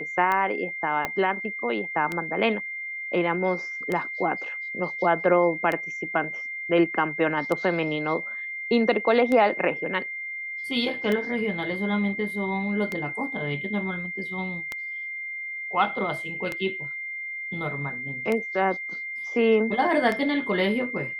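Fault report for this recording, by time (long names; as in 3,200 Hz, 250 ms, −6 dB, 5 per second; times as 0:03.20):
scratch tick 33 1/3 rpm −14 dBFS
whistle 2,100 Hz −31 dBFS
0:01.05: click −12 dBFS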